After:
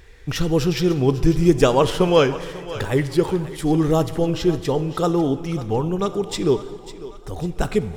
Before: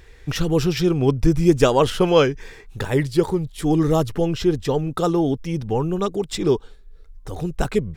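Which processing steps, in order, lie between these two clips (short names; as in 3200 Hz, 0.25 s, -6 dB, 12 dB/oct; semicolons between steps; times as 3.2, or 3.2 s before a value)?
on a send: thinning echo 0.548 s, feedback 52%, high-pass 420 Hz, level -14 dB; on the sum: plate-style reverb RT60 2 s, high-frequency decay 0.75×, DRR 12.5 dB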